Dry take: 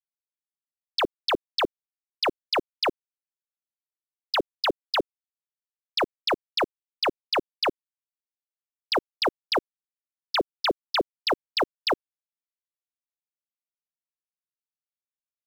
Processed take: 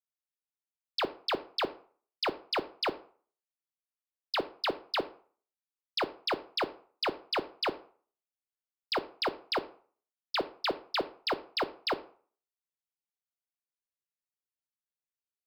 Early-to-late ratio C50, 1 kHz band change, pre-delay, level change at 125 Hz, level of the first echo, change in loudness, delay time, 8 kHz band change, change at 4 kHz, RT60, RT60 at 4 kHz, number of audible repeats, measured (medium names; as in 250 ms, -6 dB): 17.0 dB, -6.0 dB, 8 ms, -6.0 dB, no echo, -6.0 dB, no echo, no reading, -6.0 dB, 0.45 s, 0.30 s, no echo